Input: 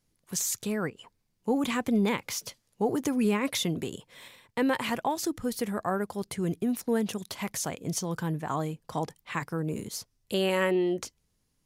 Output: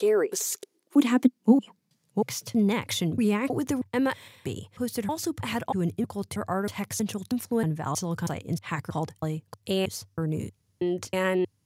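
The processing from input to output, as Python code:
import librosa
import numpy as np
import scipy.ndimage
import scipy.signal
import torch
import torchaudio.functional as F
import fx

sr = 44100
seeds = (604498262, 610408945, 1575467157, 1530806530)

y = fx.block_reorder(x, sr, ms=318.0, group=3)
y = fx.filter_sweep_highpass(y, sr, from_hz=400.0, to_hz=97.0, start_s=0.61, end_s=2.68, q=5.5)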